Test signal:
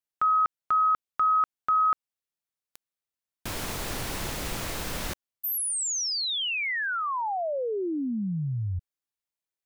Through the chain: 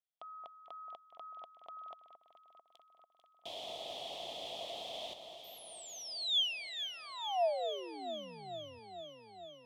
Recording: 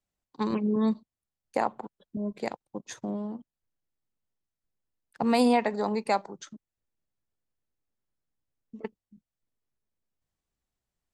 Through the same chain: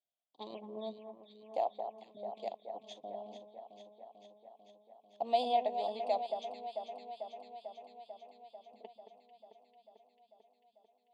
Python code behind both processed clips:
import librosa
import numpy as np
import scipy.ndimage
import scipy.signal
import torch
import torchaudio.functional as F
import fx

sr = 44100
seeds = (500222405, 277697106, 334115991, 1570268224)

y = fx.double_bandpass(x, sr, hz=1500.0, octaves=2.3)
y = fx.echo_alternate(y, sr, ms=222, hz=1800.0, feedback_pct=84, wet_db=-8.0)
y = F.gain(torch.from_numpy(y), 1.0).numpy()